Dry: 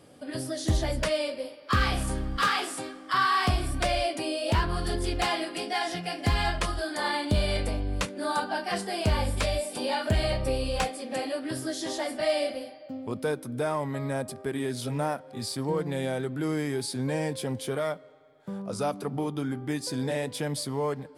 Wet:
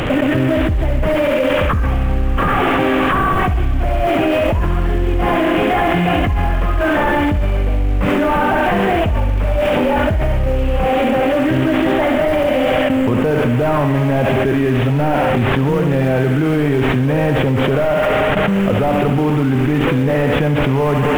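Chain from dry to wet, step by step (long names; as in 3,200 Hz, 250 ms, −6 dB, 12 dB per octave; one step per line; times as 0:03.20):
linear delta modulator 16 kbit/s, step −37.5 dBFS
in parallel at −6 dB: floating-point word with a short mantissa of 2 bits
on the sum: brickwall limiter −19 dBFS, peak gain reduction 7.5 dB
on a send: feedback echo with a high-pass in the loop 69 ms, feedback 68%, high-pass 300 Hz, level −7.5 dB
on the sum: noise gate with hold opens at −31 dBFS
low-shelf EQ 140 Hz +9.5 dB
echo ahead of the sound 121 ms −17.5 dB
envelope flattener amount 100%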